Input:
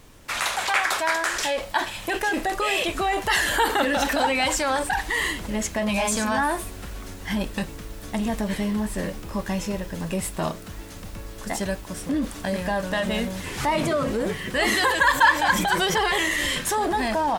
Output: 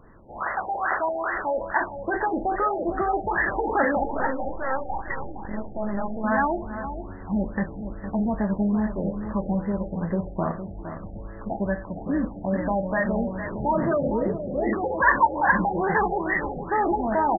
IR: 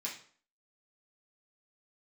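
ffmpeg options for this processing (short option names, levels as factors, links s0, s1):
-filter_complex "[0:a]asettb=1/sr,asplit=3[s0][s1][s2];[s0]atrim=end=4.034[s3];[s1]atrim=start=4.03:end=6.24,asetpts=PTS-STARTPTS,afade=t=in:d=0.004:c=qsin,afade=t=out:st=2.206:d=0.004:c=qsin,aeval=exprs='max(val(0),0)':c=same[s4];[s2]atrim=start=6.236[s5];[s3][s4]acrossfade=d=0.004:c1=hsin:c2=qsin[s6];[s6][s5]acrossfade=d=0.004:c1=qsin:c2=hsin,asettb=1/sr,asplit=3[s7][s8][s9];[s7]atrim=end=14.134[s10];[s8]atrim=start=14.13:end=14.73,asetpts=PTS-STARTPTS,afade=t=in:d=0.004:c=qsin,afade=t=out:st=0.596:d=0.004:c=qsin,asuperstop=centerf=1300:order=8:qfactor=0.9[s11];[s9]atrim=start=14.726[s12];[s10][s11]acrossfade=d=0.004:c1=hsin:c2=qsin[s13];[s13][s12]acrossfade=d=0.004:c1=qsin:c2=hsin,asplit=2[s14][s15];[s15]adelay=460.6,volume=0.316,highshelf=f=4000:g=-10.4[s16];[s14][s16]amix=inputs=2:normalize=0,asplit=2[s17][s18];[1:a]atrim=start_sample=2205,asetrate=33516,aresample=44100[s19];[s18][s19]afir=irnorm=-1:irlink=0,volume=0.282[s20];[s17][s20]amix=inputs=2:normalize=0,afftfilt=real='re*lt(b*sr/1024,840*pow(2100/840,0.5+0.5*sin(2*PI*2.4*pts/sr)))':imag='im*lt(b*sr/1024,840*pow(2100/840,0.5+0.5*sin(2*PI*2.4*pts/sr)))':win_size=1024:overlap=0.75"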